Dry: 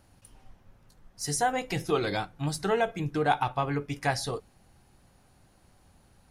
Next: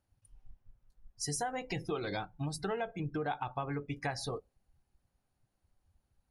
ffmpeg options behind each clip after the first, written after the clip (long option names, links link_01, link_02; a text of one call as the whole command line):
ffmpeg -i in.wav -af "afftdn=noise_reduction=21:noise_floor=-41,acompressor=threshold=-34dB:ratio=4" out.wav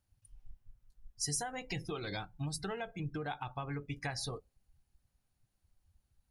ffmpeg -i in.wav -af "equalizer=frequency=550:width=0.34:gain=-8,volume=2.5dB" out.wav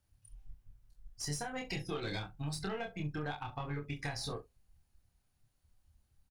ffmpeg -i in.wav -filter_complex "[0:a]acrossover=split=450|4100[link_01][link_02][link_03];[link_01]acompressor=threshold=-40dB:ratio=4[link_04];[link_02]acompressor=threshold=-41dB:ratio=4[link_05];[link_03]acompressor=threshold=-47dB:ratio=4[link_06];[link_04][link_05][link_06]amix=inputs=3:normalize=0,aeval=exprs='0.0501*(cos(1*acos(clip(val(0)/0.0501,-1,1)))-cos(1*PI/2))+0.00282*(cos(6*acos(clip(val(0)/0.0501,-1,1)))-cos(6*PI/2))':channel_layout=same,asplit=2[link_07][link_08];[link_08]aecho=0:1:27|67:0.668|0.15[link_09];[link_07][link_09]amix=inputs=2:normalize=0,volume=1dB" out.wav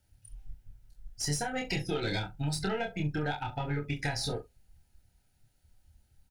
ffmpeg -i in.wav -af "asuperstop=centerf=1100:order=20:qfactor=4.6,volume=6.5dB" out.wav